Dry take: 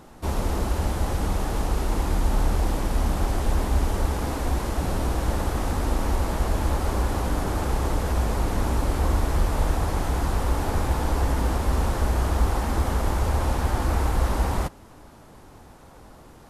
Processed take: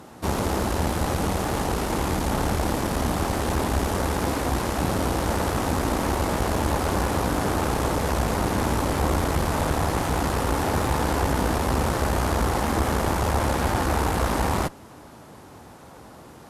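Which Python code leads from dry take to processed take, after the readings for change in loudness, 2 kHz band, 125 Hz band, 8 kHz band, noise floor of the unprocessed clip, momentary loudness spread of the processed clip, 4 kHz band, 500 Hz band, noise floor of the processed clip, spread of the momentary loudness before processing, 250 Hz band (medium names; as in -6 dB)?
+1.5 dB, +5.0 dB, -1.0 dB, +5.0 dB, -48 dBFS, 2 LU, +5.0 dB, +4.5 dB, -45 dBFS, 3 LU, +4.0 dB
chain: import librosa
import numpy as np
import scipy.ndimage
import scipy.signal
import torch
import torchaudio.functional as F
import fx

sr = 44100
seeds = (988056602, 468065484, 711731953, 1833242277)

y = scipy.signal.sosfilt(scipy.signal.butter(2, 91.0, 'highpass', fs=sr, output='sos'), x)
y = fx.tube_stage(y, sr, drive_db=23.0, bias=0.75)
y = F.gain(torch.from_numpy(y), 8.5).numpy()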